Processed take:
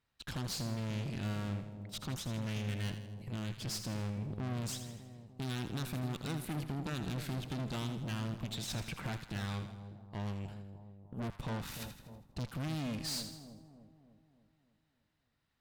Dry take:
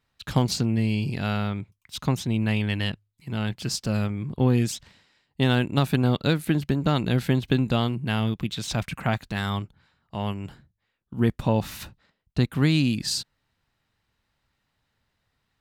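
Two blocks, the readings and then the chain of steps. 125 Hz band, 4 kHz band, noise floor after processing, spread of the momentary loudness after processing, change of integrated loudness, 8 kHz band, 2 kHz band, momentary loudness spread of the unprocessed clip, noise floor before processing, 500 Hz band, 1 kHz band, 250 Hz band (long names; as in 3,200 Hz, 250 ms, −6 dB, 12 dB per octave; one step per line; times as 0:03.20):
−13.0 dB, −11.5 dB, −79 dBFS, 10 LU, −14.0 dB, −8.5 dB, −14.0 dB, 14 LU, −76 dBFS, −16.5 dB, −14.0 dB, −15.0 dB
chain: tube saturation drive 32 dB, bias 0.75
on a send: echo with a time of its own for lows and highs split 890 Hz, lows 299 ms, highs 81 ms, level −9.5 dB
on the sum: level −3.5 dB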